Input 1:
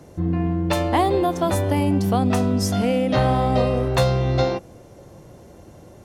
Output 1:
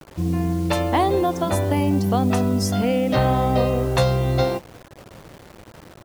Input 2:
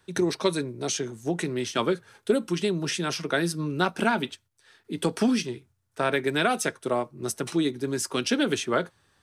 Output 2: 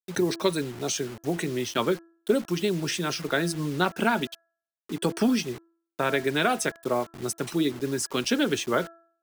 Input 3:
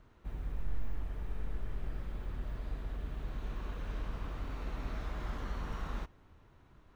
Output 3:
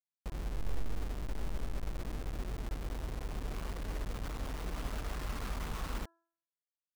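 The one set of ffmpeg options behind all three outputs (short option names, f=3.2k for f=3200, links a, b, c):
-af "afftfilt=real='re*gte(hypot(re,im),0.01)':imag='im*gte(hypot(re,im),0.01)':win_size=1024:overlap=0.75,acrusher=bits=6:mix=0:aa=0.000001,bandreject=f=334.3:t=h:w=4,bandreject=f=668.6:t=h:w=4,bandreject=f=1.0029k:t=h:w=4,bandreject=f=1.3372k:t=h:w=4,bandreject=f=1.6715k:t=h:w=4"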